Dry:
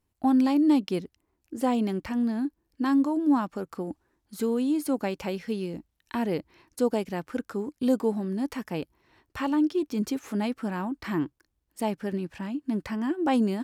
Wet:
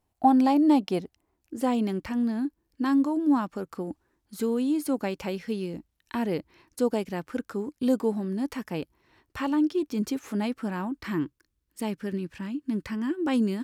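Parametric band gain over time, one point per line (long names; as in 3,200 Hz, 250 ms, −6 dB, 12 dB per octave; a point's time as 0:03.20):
parametric band 730 Hz 0.65 octaves
0:00.98 +10.5 dB
0:01.60 −1.5 dB
0:10.84 −1.5 dB
0:11.25 −10.5 dB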